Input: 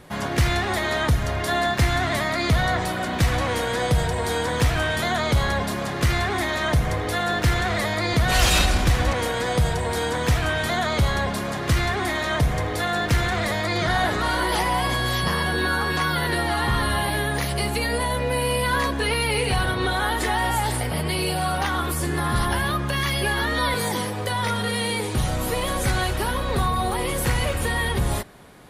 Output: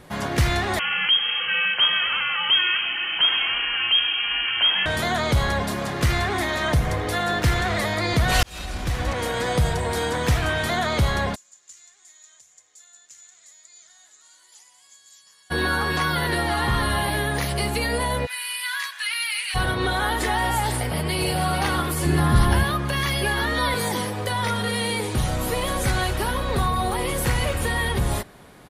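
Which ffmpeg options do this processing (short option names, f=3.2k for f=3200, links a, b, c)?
-filter_complex "[0:a]asettb=1/sr,asplit=3[a][b][c];[a]atrim=end=0.794[d];[b]atrim=start=0.79:end=4.86,asetpts=PTS-STARTPTS,afade=t=in:d=0.004:c=qsin,afade=t=out:st=4.066:d=0.004:c=qsin,lowpass=f=2.8k:t=q:w=0.5098,lowpass=f=2.8k:t=q:w=0.6013,lowpass=f=2.8k:t=q:w=0.9,lowpass=f=2.8k:t=q:w=2.563,afreqshift=-3300[e];[c]atrim=start=4.856[f];[d][e]acrossfade=d=0.004:c1=hsin:c2=qsin[g];[g][f]acrossfade=d=0.004:c1=qsin:c2=hsin,asplit=3[h][i][j];[h]afade=t=out:st=11.34:d=0.02[k];[i]bandpass=f=7k:t=q:w=14,afade=t=in:st=11.34:d=0.02,afade=t=out:st=15.5:d=0.02[l];[j]afade=t=in:st=15.5:d=0.02[m];[k][l][m]amix=inputs=3:normalize=0,asplit=3[n][o][p];[n]afade=t=out:st=18.25:d=0.02[q];[o]highpass=f=1.5k:w=0.5412,highpass=f=1.5k:w=1.3066,afade=t=in:st=18.25:d=0.02,afade=t=out:st=19.54:d=0.02[r];[p]afade=t=in:st=19.54:d=0.02[s];[q][r][s]amix=inputs=3:normalize=0,asplit=2[t][u];[u]afade=t=in:st=20.76:d=0.01,afade=t=out:st=21.37:d=0.01,aecho=0:1:440|880|1320|1760|2200|2640|3080|3520:0.473151|0.283891|0.170334|0.102201|0.0613204|0.0367922|0.0220753|0.0132452[v];[t][v]amix=inputs=2:normalize=0,asettb=1/sr,asplit=3[w][x][y];[w]atrim=end=22.054[z];[x]atrim=start=22.05:end=22.64,asetpts=PTS-STARTPTS,afade=t=in:d=0.004:c=qsin,afade=t=out:st=0.586:d=0.004:c=qsin,lowshelf=f=280:g=8[aa];[y]atrim=start=22.636[ab];[z][aa]acrossfade=d=0.004:c1=hsin:c2=qsin[ac];[ac][ab]acrossfade=d=0.004:c1=qsin:c2=hsin,asplit=2[ad][ae];[ad]atrim=end=8.43,asetpts=PTS-STARTPTS,afade=t=out:st=8.426:d=0.004:c=hsin[af];[ae]atrim=start=8.43,asetpts=PTS-STARTPTS,afade=t=in:d=0.97[ag];[af][ag]concat=n=2:v=0:a=1"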